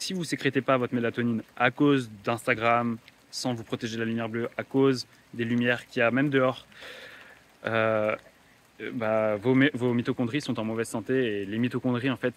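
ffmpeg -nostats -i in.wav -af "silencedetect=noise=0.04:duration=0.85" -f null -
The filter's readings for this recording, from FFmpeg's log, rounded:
silence_start: 6.51
silence_end: 7.65 | silence_duration: 1.14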